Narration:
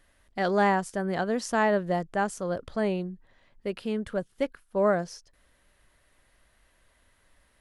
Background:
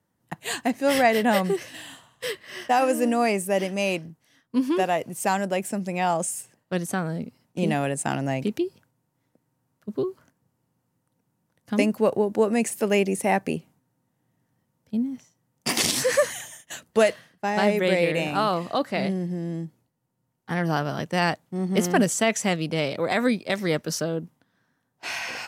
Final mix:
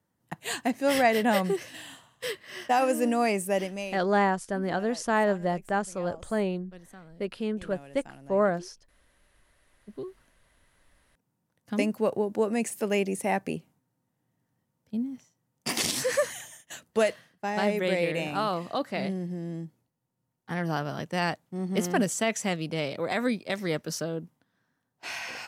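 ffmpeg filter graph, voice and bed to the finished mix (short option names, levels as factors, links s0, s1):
-filter_complex "[0:a]adelay=3550,volume=0.944[s0];[1:a]volume=5.01,afade=t=out:st=3.53:d=0.48:silence=0.112202,afade=t=in:st=9.45:d=1.47:silence=0.141254[s1];[s0][s1]amix=inputs=2:normalize=0"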